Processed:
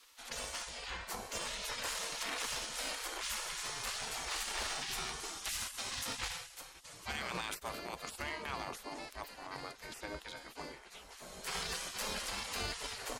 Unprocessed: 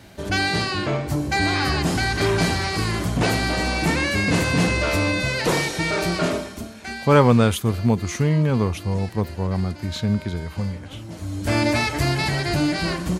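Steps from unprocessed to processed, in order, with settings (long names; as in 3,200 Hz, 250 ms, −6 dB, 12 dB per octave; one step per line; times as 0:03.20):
gate on every frequency bin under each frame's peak −20 dB weak
low-shelf EQ 120 Hz +10 dB
brickwall limiter −23.5 dBFS, peak gain reduction 8 dB
harmonic generator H 7 −21 dB, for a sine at −11.5 dBFS
level +2 dB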